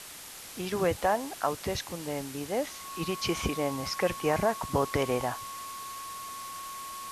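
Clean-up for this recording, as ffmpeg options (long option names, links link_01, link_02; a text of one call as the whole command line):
ffmpeg -i in.wav -af "bandreject=frequency=1100:width=30,afwtdn=0.0071" out.wav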